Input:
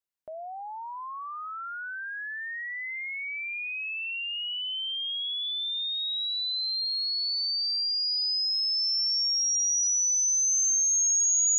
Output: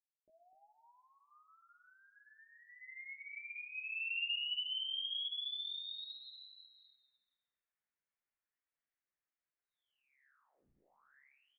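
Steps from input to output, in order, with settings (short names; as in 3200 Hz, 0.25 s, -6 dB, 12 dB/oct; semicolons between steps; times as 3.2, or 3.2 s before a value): opening faded in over 3.38 s; feedback echo 0.252 s, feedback 18%, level -11 dB; 2.81–3.39 dynamic EQ 2000 Hz, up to +5 dB, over -51 dBFS, Q 4; soft clip -24 dBFS, distortion -16 dB; on a send at -17.5 dB: reverb RT60 1.4 s, pre-delay 20 ms; on the sum: low-pass sweep 340 Hz -> 1900 Hz, 2.05–4.22; downsampling 8000 Hz; chorus voices 4, 0.58 Hz, delay 17 ms, depth 3.2 ms; gain +1.5 dB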